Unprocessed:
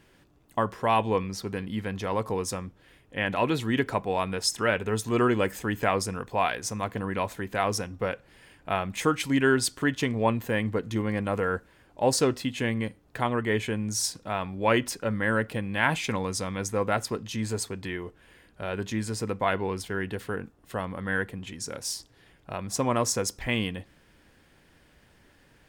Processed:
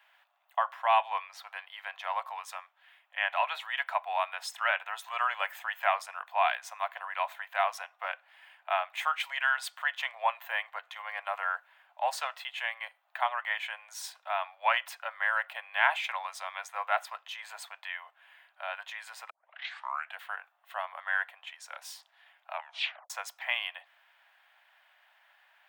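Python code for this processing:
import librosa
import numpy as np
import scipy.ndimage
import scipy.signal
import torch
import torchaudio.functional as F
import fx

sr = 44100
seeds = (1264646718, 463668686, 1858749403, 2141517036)

y = fx.highpass(x, sr, hz=640.0, slope=6, at=(2.26, 3.22))
y = fx.edit(y, sr, fx.tape_start(start_s=19.3, length_s=0.88),
    fx.tape_stop(start_s=22.52, length_s=0.58), tone=tone)
y = scipy.signal.sosfilt(scipy.signal.butter(12, 650.0, 'highpass', fs=sr, output='sos'), y)
y = fx.band_shelf(y, sr, hz=7500.0, db=-14.0, octaves=1.7)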